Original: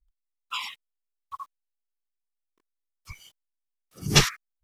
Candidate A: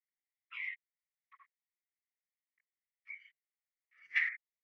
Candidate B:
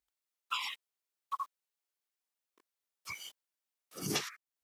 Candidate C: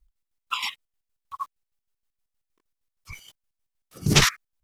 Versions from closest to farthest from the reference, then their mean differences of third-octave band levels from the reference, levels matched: C, B, A; 3.0, 9.0, 14.0 decibels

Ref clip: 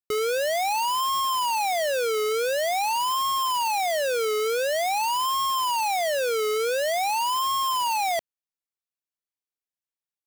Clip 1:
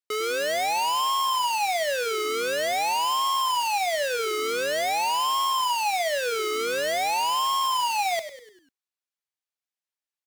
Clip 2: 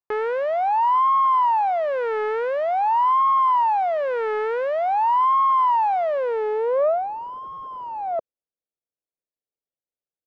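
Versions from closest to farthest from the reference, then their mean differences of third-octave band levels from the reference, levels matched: 1, 2; 4.5, 14.5 decibels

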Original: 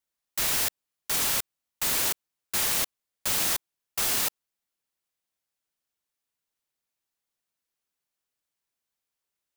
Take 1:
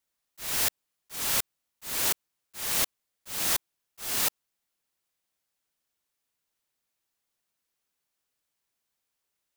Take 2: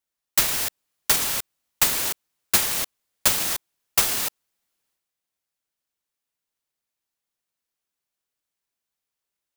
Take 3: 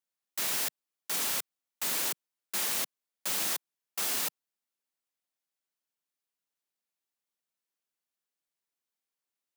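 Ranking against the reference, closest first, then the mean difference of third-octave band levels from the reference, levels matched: 3, 2, 1; 1.0, 4.0, 6.5 decibels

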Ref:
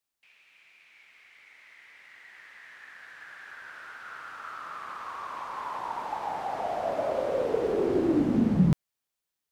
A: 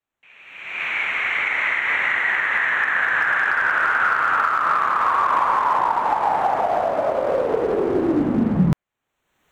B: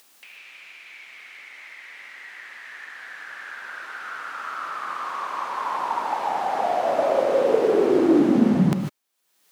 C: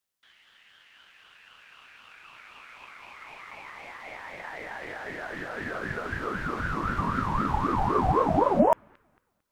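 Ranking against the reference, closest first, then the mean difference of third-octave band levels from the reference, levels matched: B, C, A; 2.5, 5.5, 8.0 decibels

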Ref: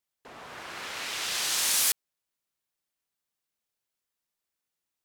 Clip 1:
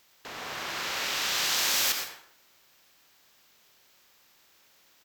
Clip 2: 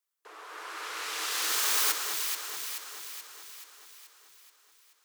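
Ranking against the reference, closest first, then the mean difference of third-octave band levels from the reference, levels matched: 1, 2; 4.5, 6.5 decibels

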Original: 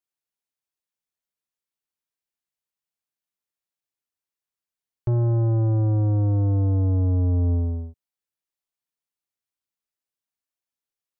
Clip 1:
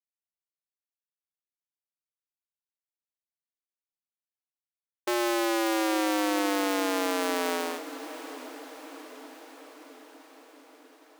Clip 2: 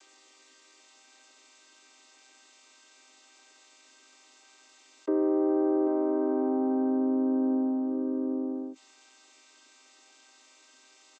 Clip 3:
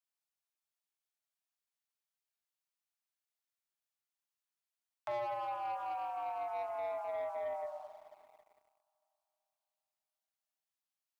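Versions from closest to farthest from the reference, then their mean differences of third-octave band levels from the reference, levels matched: 2, 3, 1; 9.5, 14.0, 23.5 decibels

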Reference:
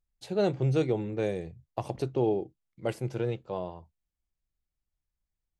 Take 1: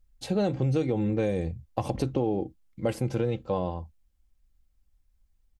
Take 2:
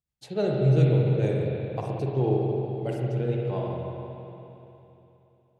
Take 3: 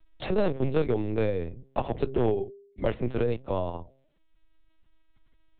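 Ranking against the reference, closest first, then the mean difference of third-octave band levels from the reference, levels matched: 1, 3, 2; 3.0, 5.0, 6.5 decibels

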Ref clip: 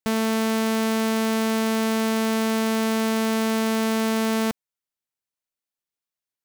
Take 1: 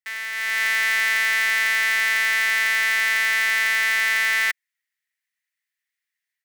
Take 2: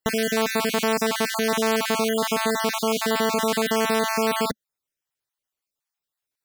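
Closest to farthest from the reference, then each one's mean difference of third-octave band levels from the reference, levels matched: 2, 1; 6.0, 10.0 decibels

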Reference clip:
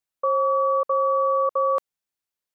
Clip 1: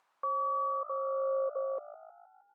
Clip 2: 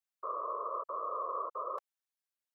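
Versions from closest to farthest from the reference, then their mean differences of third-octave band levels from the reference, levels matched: 1, 2; 2.5, 5.5 decibels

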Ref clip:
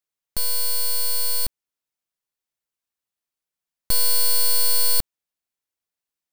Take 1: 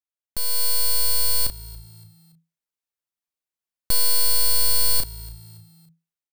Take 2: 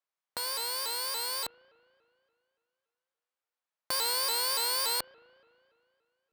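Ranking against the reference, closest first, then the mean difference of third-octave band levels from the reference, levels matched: 1, 2; 2.0, 6.5 decibels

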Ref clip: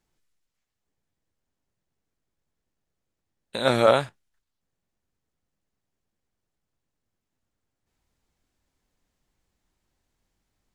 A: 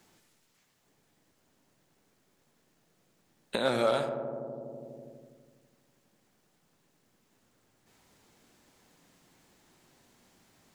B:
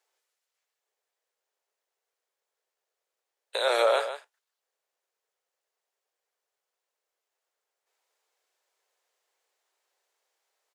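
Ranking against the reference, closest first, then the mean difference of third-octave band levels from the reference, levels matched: A, B; 4.0, 9.5 decibels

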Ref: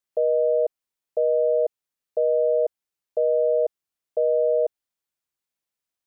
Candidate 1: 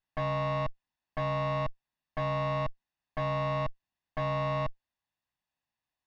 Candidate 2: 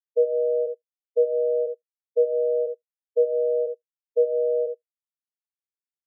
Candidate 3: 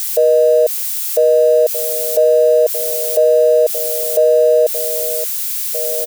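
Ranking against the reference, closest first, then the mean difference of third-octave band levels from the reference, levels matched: 2, 3, 1; 1.0, 9.0, 21.0 decibels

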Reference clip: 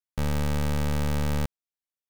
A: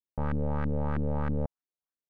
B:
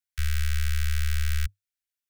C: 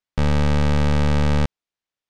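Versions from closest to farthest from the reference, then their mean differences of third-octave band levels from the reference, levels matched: C, A, B; 3.5, 12.5, 20.0 decibels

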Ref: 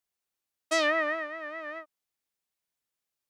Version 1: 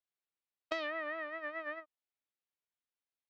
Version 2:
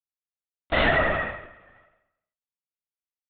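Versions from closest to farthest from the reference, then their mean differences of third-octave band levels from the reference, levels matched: 1, 2; 3.5, 12.5 decibels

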